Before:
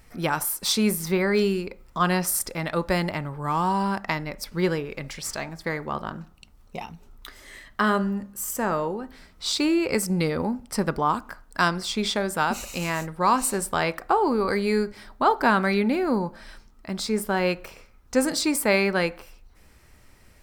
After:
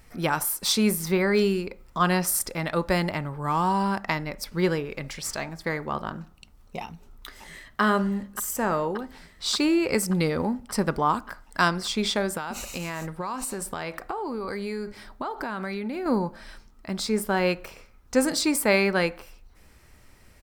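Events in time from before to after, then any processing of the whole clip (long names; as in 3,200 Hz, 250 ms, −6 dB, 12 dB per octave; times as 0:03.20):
0:06.82–0:07.81: delay throw 580 ms, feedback 80%, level −10.5 dB
0:12.37–0:16.06: downward compressor 12 to 1, threshold −27 dBFS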